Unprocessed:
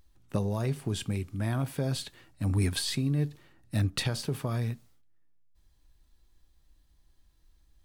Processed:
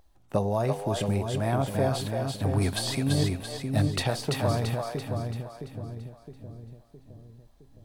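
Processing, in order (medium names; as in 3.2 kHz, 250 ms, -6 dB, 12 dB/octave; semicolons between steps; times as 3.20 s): peaking EQ 710 Hz +12 dB 1.1 oct; two-band feedback delay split 460 Hz, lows 664 ms, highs 337 ms, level -3.5 dB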